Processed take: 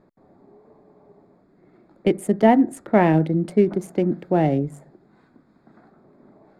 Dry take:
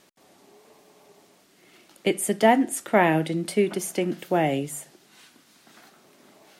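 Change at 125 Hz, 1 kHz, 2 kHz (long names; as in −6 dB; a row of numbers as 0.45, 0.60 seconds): +7.5, +1.0, −3.5 decibels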